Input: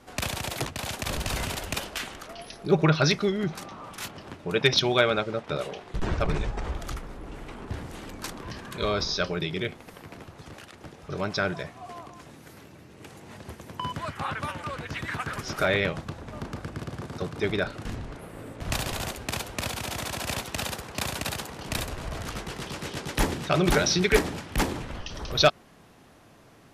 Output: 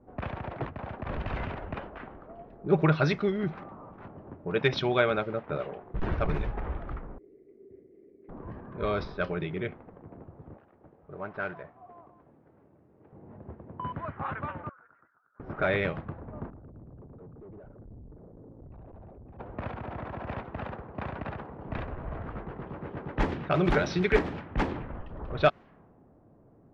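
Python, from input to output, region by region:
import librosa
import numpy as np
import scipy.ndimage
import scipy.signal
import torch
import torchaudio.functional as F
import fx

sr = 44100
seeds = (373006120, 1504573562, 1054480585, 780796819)

y = fx.chain(x, sr, fx.double_bandpass(hz=900.0, octaves=2.4),
    fx.peak_eq(hz=1500.0, db=-12.0, octaves=0.78), at=(7.18, 8.29))
y = fx.chain(y, sr, fx.cvsd(bps=32000),
    fx.low_shelf(hz=470.0, db=-11.0), at=(10.57, 13.13))
y = fx.chain(y, sr, fx.bandpass_q(hz=1400.0, q=11.0),
    fx.over_compress(threshold_db=-51.0, ratio=-1.0), at=(14.69, 15.4))
y = fx.chain(y, sr, fx.envelope_sharpen(power=2.0),
    fx.dynamic_eq(hz=300.0, q=1.5, threshold_db=-41.0, ratio=4.0, max_db=-4),
    fx.tube_stage(drive_db=43.0, bias=0.75), at=(16.5, 19.39))
y = scipy.signal.sosfilt(scipy.signal.butter(2, 2300.0, 'lowpass', fs=sr, output='sos'), y)
y = fx.env_lowpass(y, sr, base_hz=540.0, full_db=-20.0)
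y = F.gain(torch.from_numpy(y), -2.0).numpy()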